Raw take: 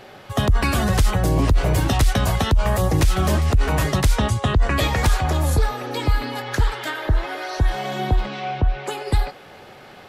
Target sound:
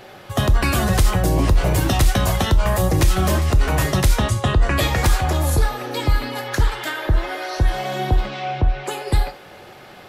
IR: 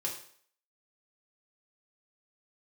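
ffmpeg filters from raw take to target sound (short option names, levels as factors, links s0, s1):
-filter_complex "[0:a]asplit=2[s0][s1];[s1]highshelf=f=8000:g=11.5[s2];[1:a]atrim=start_sample=2205,afade=t=out:st=0.14:d=0.01,atrim=end_sample=6615[s3];[s2][s3]afir=irnorm=-1:irlink=0,volume=0.398[s4];[s0][s4]amix=inputs=2:normalize=0,volume=0.841"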